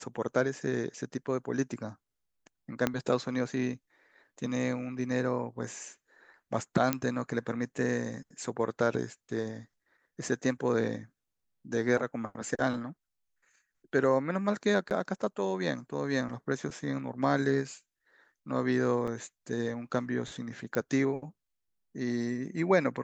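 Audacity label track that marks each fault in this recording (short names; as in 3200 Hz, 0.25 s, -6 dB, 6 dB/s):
2.870000	2.870000	pop -12 dBFS
6.930000	6.930000	pop -11 dBFS
14.900000	14.910000	gap 8.7 ms
19.070000	19.080000	gap 5.5 ms
20.750000	20.750000	pop -17 dBFS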